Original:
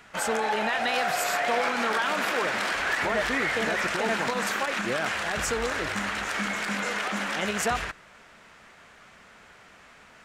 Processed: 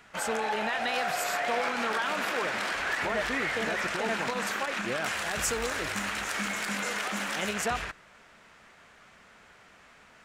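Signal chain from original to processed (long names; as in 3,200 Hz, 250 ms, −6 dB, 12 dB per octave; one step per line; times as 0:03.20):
loose part that buzzes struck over −40 dBFS, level −27 dBFS
0:05.04–0:07.54: high-shelf EQ 6,900 Hz +10.5 dB
level −3.5 dB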